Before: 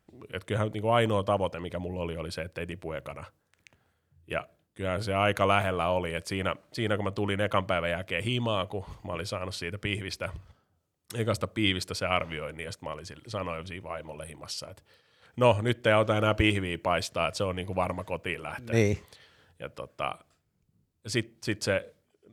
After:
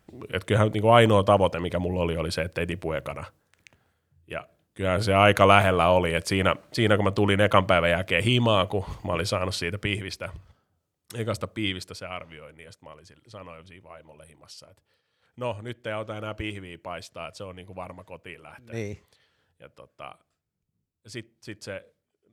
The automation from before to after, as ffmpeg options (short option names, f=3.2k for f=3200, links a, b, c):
-af "volume=17.5dB,afade=t=out:st=2.75:d=1.63:silence=0.316228,afade=t=in:st=4.38:d=0.7:silence=0.316228,afade=t=out:st=9.44:d=0.77:silence=0.398107,afade=t=out:st=11.49:d=0.64:silence=0.375837"